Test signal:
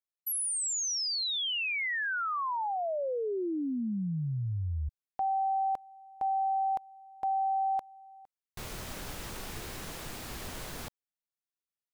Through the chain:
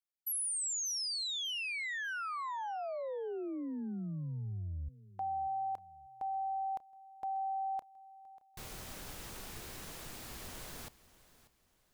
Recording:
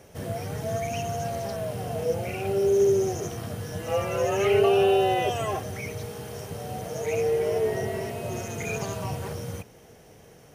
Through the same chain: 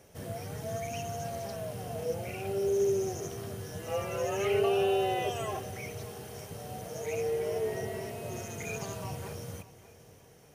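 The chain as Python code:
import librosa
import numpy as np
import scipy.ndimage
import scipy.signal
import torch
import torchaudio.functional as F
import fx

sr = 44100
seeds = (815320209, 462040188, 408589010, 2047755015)

y = fx.high_shelf(x, sr, hz=4700.0, db=4.0)
y = fx.echo_feedback(y, sr, ms=590, feedback_pct=34, wet_db=-18.0)
y = y * 10.0 ** (-7.0 / 20.0)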